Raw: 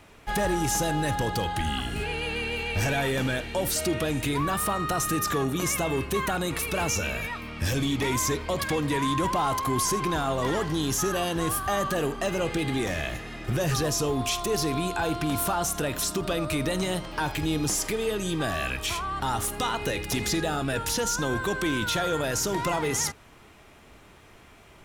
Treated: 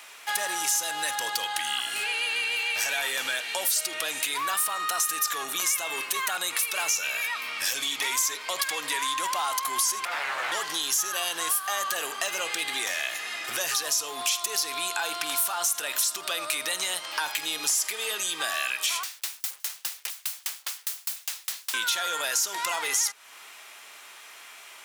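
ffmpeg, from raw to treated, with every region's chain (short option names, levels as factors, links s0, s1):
-filter_complex "[0:a]asettb=1/sr,asplit=3[s0][s1][s2];[s0]atrim=end=5.474[s3];[s1]atrim=start=5.47:end=6.28,asetpts=PTS-STARTPTS,afade=t=in:d=0.004:c=qsin,afade=t=out:st=0.806:d=0.004:c=qsin,highpass=56,aeval=exprs='val(0)+0.0126*(sin(2*PI*60*n/s)+sin(2*PI*2*60*n/s)/2+sin(2*PI*3*60*n/s)/3+sin(2*PI*4*60*n/s)/4+sin(2*PI*5*60*n/s)/5)':c=same,aeval=exprs='sgn(val(0))*max(abs(val(0))-0.00141,0)':c=same[s4];[s2]atrim=start=6.276[s5];[s3][s4]acrossfade=d=0.004:c1=hsin:c2=qsin[s6];[s6][s5]acrossfade=d=0.004:c1=qsin:c2=hsin,asettb=1/sr,asplit=3[s7][s8][s9];[s7]atrim=end=10.054[s10];[s8]atrim=start=10.05:end=10.52,asetpts=PTS-STARTPTS,afade=t=in:d=0.004:c=qsin,afade=t=out:st=0.466:d=0.004:c=qsin,aeval=exprs='abs(val(0))':c=same,acrossover=split=2800[s11][s12];[s12]acompressor=threshold=0.00178:ratio=4:attack=1:release=60[s13];[s11][s13]amix=inputs=2:normalize=0,asplit=2[s14][s15];[s15]adelay=14,volume=0.631[s16];[s14][s16]amix=inputs=2:normalize=0,atrim=end_sample=20727[s17];[s9]atrim=start=10.516[s18];[s10][s17]acrossfade=d=0.004:c1=hsin:c2=qsin[s19];[s19][s18]acrossfade=d=0.004:c1=qsin:c2=hsin,asettb=1/sr,asplit=3[s20][s21][s22];[s20]atrim=end=19.034[s23];[s21]atrim=start=19.03:end=21.74,asetpts=PTS-STARTPTS,afade=t=in:d=0.004:c=qsin,afade=t=out:st=2.706:d=0.004:c=qsin,aeval=exprs='(mod(37.6*val(0)+1,2)-1)/37.6':c=same,aeval=exprs='val(0)*pow(10,-37*if(lt(mod(4.9*n/s,1),2*abs(4.9)/1000),1-mod(4.9*n/s,1)/(2*abs(4.9)/1000),(mod(4.9*n/s,1)-2*abs(4.9)/1000)/(1-2*abs(4.9)/1000))/20)':c=same[s24];[s22]atrim=start=21.736[s25];[s23][s24]acrossfade=d=0.004:c1=hsin:c2=qsin[s26];[s26][s25]acrossfade=d=0.004:c1=qsin:c2=hsin,highpass=960,highshelf=f=2900:g=9,acompressor=threshold=0.02:ratio=2.5,volume=2"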